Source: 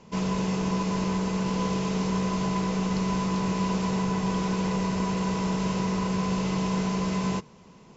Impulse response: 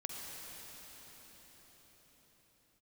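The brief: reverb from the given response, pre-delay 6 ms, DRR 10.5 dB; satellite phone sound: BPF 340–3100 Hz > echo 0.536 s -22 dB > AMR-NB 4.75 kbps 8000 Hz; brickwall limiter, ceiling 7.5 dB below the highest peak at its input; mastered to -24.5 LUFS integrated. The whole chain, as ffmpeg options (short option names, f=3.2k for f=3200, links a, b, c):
-filter_complex "[0:a]alimiter=limit=-23dB:level=0:latency=1,asplit=2[a][b];[1:a]atrim=start_sample=2205,adelay=6[c];[b][c]afir=irnorm=-1:irlink=0,volume=-11dB[d];[a][d]amix=inputs=2:normalize=0,highpass=340,lowpass=3.1k,aecho=1:1:536:0.0794,volume=15dB" -ar 8000 -c:a libopencore_amrnb -b:a 4750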